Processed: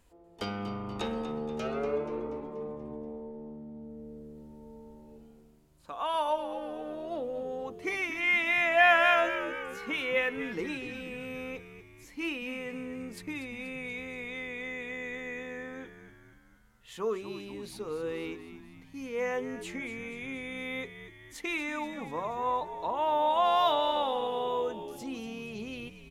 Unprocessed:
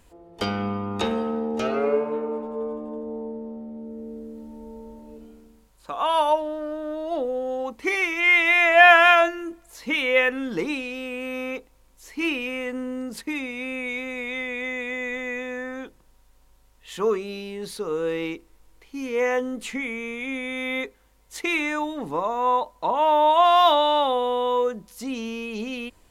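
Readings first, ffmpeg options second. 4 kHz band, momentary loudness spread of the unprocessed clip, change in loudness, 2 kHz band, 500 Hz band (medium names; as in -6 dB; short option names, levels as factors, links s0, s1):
-8.5 dB, 20 LU, -8.5 dB, -8.5 dB, -8.5 dB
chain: -filter_complex "[0:a]asplit=7[s0][s1][s2][s3][s4][s5][s6];[s1]adelay=240,afreqshift=-75,volume=0.266[s7];[s2]adelay=480,afreqshift=-150,volume=0.151[s8];[s3]adelay=720,afreqshift=-225,volume=0.0861[s9];[s4]adelay=960,afreqshift=-300,volume=0.0495[s10];[s5]adelay=1200,afreqshift=-375,volume=0.0282[s11];[s6]adelay=1440,afreqshift=-450,volume=0.016[s12];[s0][s7][s8][s9][s10][s11][s12]amix=inputs=7:normalize=0,volume=0.355"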